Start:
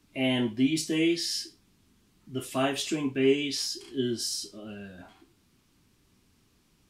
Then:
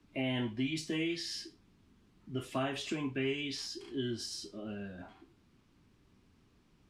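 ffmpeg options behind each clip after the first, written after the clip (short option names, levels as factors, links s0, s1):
-filter_complex "[0:a]aemphasis=mode=reproduction:type=75kf,acrossover=split=130|870[s0][s1][s2];[s1]acompressor=threshold=0.0178:ratio=6[s3];[s2]alimiter=level_in=2.11:limit=0.0631:level=0:latency=1:release=79,volume=0.473[s4];[s0][s3][s4]amix=inputs=3:normalize=0"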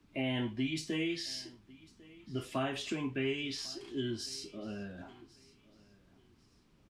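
-af "aecho=1:1:1099|2198:0.075|0.0217"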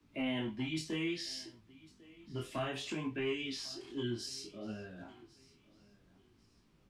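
-filter_complex "[0:a]acrossover=split=170|1100|1800[s0][s1][s2][s3];[s1]volume=37.6,asoftclip=hard,volume=0.0266[s4];[s0][s4][s2][s3]amix=inputs=4:normalize=0,flanger=delay=17.5:depth=7.7:speed=0.61,volume=1.12"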